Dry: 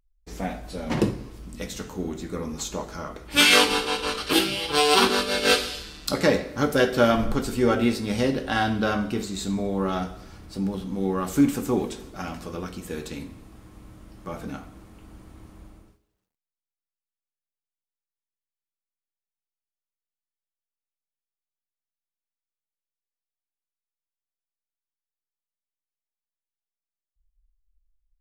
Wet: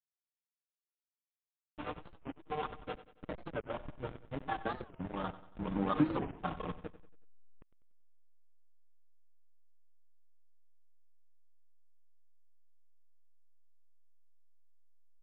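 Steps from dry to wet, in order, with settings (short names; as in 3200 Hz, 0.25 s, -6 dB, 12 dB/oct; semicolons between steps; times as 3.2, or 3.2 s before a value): Doppler pass-by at 11.17, 8 m/s, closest 1.5 m; bell 1000 Hz +13 dB 1 oct; comb 6.5 ms, depth 72%; compressor 5:1, threshold -37 dBFS, peak gain reduction 23.5 dB; plain phase-vocoder stretch 0.54×; backlash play -39.5 dBFS; on a send: feedback echo 93 ms, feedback 46%, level -15.5 dB; on the sum: downsampling 8000 Hz; record warp 45 rpm, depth 250 cents; gain +11.5 dB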